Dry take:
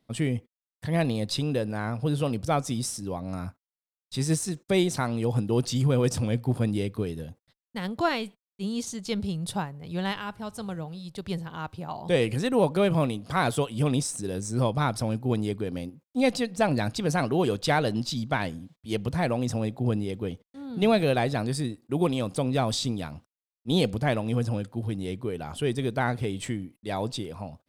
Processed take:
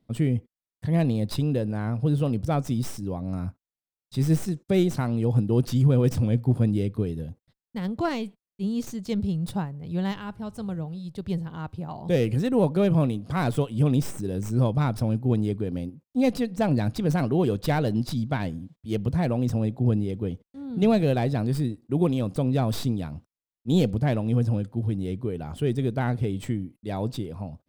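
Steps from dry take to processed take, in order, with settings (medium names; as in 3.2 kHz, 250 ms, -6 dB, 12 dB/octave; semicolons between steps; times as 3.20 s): tracing distortion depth 0.067 ms; bass shelf 480 Hz +11.5 dB; trim -6 dB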